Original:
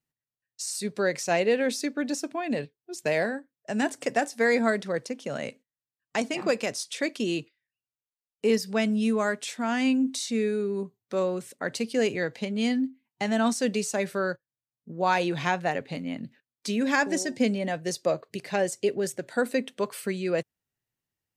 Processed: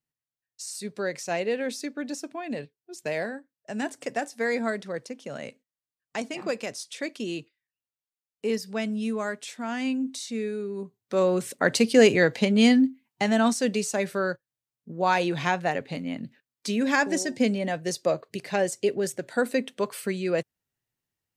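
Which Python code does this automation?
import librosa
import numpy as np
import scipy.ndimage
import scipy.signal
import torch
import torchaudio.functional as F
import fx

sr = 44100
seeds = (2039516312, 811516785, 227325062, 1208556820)

y = fx.gain(x, sr, db=fx.line((10.75, -4.0), (11.48, 8.5), (12.58, 8.5), (13.62, 1.0)))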